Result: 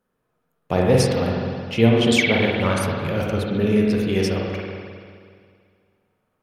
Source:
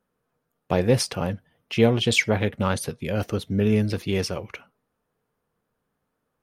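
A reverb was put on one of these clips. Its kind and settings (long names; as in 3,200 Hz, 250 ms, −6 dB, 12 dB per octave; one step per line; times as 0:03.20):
spring reverb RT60 2.1 s, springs 44/52 ms, chirp 25 ms, DRR −2 dB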